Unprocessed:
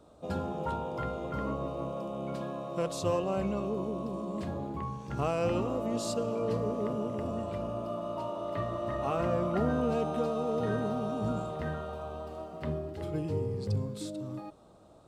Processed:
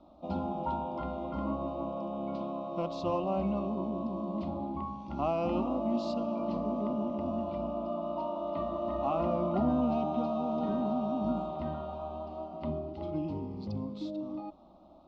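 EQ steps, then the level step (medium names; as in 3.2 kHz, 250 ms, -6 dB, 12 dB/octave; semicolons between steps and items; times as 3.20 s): Bessel low-pass 2.9 kHz, order 8; static phaser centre 450 Hz, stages 6; +3.5 dB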